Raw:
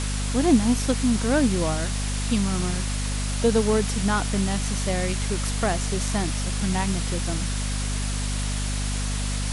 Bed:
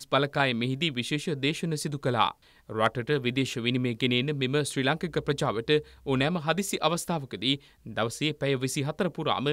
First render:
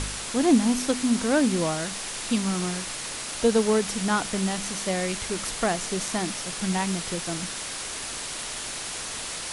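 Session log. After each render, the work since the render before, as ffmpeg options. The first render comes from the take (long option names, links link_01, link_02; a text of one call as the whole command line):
ffmpeg -i in.wav -af "bandreject=frequency=50:width_type=h:width=4,bandreject=frequency=100:width_type=h:width=4,bandreject=frequency=150:width_type=h:width=4,bandreject=frequency=200:width_type=h:width=4,bandreject=frequency=250:width_type=h:width=4" out.wav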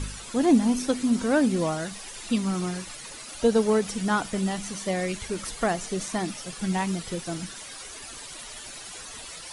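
ffmpeg -i in.wav -af "afftdn=noise_reduction=12:noise_floor=-34" out.wav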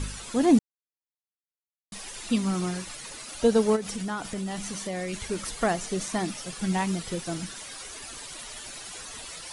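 ffmpeg -i in.wav -filter_complex "[0:a]asplit=3[link_01][link_02][link_03];[link_01]afade=type=out:start_time=3.75:duration=0.02[link_04];[link_02]acompressor=threshold=-29dB:ratio=4:attack=3.2:release=140:knee=1:detection=peak,afade=type=in:start_time=3.75:duration=0.02,afade=type=out:start_time=5.12:duration=0.02[link_05];[link_03]afade=type=in:start_time=5.12:duration=0.02[link_06];[link_04][link_05][link_06]amix=inputs=3:normalize=0,asplit=3[link_07][link_08][link_09];[link_07]atrim=end=0.59,asetpts=PTS-STARTPTS,afade=type=out:start_time=0.586:duration=0.004:curve=hsin[link_10];[link_08]atrim=start=0.59:end=1.92,asetpts=PTS-STARTPTS,volume=0[link_11];[link_09]atrim=start=1.92,asetpts=PTS-STARTPTS,afade=type=in:duration=0.004:curve=hsin[link_12];[link_10][link_11][link_12]concat=n=3:v=0:a=1" out.wav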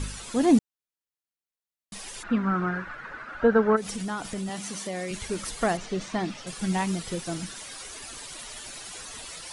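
ffmpeg -i in.wav -filter_complex "[0:a]asplit=3[link_01][link_02][link_03];[link_01]afade=type=out:start_time=2.22:duration=0.02[link_04];[link_02]lowpass=frequency=1500:width_type=q:width=5.4,afade=type=in:start_time=2.22:duration=0.02,afade=type=out:start_time=3.76:duration=0.02[link_05];[link_03]afade=type=in:start_time=3.76:duration=0.02[link_06];[link_04][link_05][link_06]amix=inputs=3:normalize=0,asettb=1/sr,asplit=3[link_07][link_08][link_09];[link_07]atrim=end=4.494[link_10];[link_08]atrim=start=4.49:end=5.11,asetpts=PTS-STARTPTS,afade=type=in:duration=0.004:curve=qsin,afade=type=out:start_time=0.616:duration=0.004:curve=qsin,highpass=160[link_11];[link_09]atrim=start=5.106[link_12];[link_10][link_11]acrossfade=duration=0.004:curve1=hsin:curve2=qsin[link_13];[link_13][link_12]acrossfade=duration=0.004:curve1=qsin:curve2=hsin,asettb=1/sr,asplit=3[link_14][link_15][link_16];[link_14]atrim=end=5.774[link_17];[link_15]atrim=start=5.77:end=6.47,asetpts=PTS-STARTPTS,afade=type=in:duration=0.004:curve=qsin,afade=type=out:start_time=0.696:duration=0.004:curve=qsin,lowpass=4400[link_18];[link_16]atrim=start=6.466[link_19];[link_17][link_18]acrossfade=duration=0.004:curve1=hsin:curve2=qsin[link_20];[link_20][link_19]acrossfade=duration=0.004:curve1=qsin:curve2=hsin" out.wav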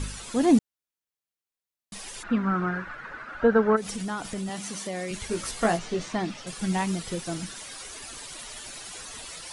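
ffmpeg -i in.wav -filter_complex "[0:a]asettb=1/sr,asplit=3[link_01][link_02][link_03];[link_01]atrim=end=5.294[link_04];[link_02]atrim=start=5.29:end=6.13,asetpts=PTS-STARTPTS,afade=type=in:duration=0.004:curve=qsin,afade=type=out:start_time=0.836:duration=0.004:curve=qsin,asplit=2[link_05][link_06];[link_06]adelay=18,volume=-5dB[link_07];[link_05][link_07]amix=inputs=2:normalize=0,atrim=end_sample=37044[link_08];[link_03]atrim=start=6.126[link_09];[link_04][link_08]acrossfade=duration=0.004:curve1=hsin:curve2=qsin[link_10];[link_10][link_09]acrossfade=duration=0.004:curve1=qsin:curve2=hsin" out.wav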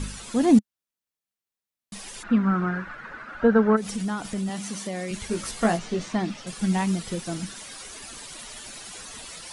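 ffmpeg -i in.wav -af "equalizer=frequency=210:width=2.9:gain=5.5" out.wav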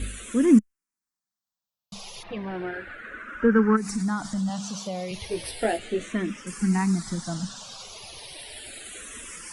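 ffmpeg -i in.wav -filter_complex "[0:a]asplit=2[link_01][link_02];[link_02]asoftclip=type=tanh:threshold=-23dB,volume=-9dB[link_03];[link_01][link_03]amix=inputs=2:normalize=0,asplit=2[link_04][link_05];[link_05]afreqshift=-0.34[link_06];[link_04][link_06]amix=inputs=2:normalize=1" out.wav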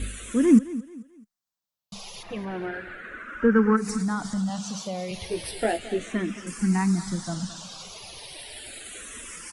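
ffmpeg -i in.wav -af "aecho=1:1:218|436|654:0.158|0.0523|0.0173" out.wav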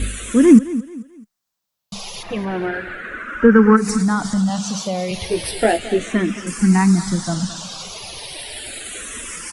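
ffmpeg -i in.wav -af "volume=9dB,alimiter=limit=-1dB:level=0:latency=1" out.wav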